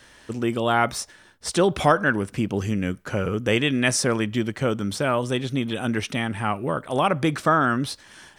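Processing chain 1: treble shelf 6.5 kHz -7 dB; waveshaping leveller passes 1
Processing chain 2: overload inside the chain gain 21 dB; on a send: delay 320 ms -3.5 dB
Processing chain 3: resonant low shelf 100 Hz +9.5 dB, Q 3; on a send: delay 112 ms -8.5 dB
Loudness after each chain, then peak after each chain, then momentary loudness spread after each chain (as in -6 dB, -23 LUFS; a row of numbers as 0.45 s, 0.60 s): -20.5 LUFS, -25.0 LUFS, -23.5 LUFS; -4.0 dBFS, -16.5 dBFS, -4.0 dBFS; 7 LU, 4 LU, 8 LU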